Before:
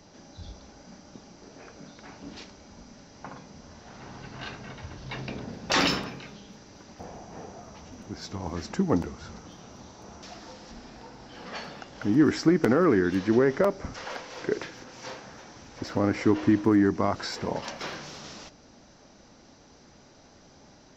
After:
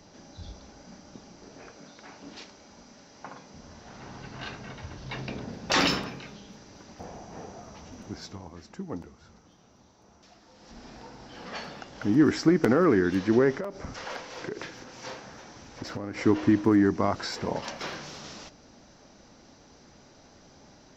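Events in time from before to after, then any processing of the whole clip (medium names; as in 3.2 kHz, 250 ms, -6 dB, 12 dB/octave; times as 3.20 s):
1.71–3.53 s: bass shelf 170 Hz -11 dB
8.11–10.89 s: dip -12 dB, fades 0.38 s
13.51–16.18 s: compression, threshold -30 dBFS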